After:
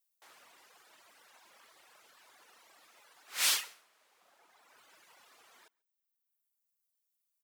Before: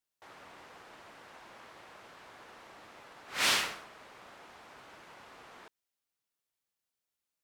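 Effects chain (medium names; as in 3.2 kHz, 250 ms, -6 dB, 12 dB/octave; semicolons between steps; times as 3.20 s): RIAA curve recording; reverb removal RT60 1.9 s; 2.68–4.73 s: bass shelf 94 Hz -9.5 dB; echo from a far wall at 24 m, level -27 dB; trim -7 dB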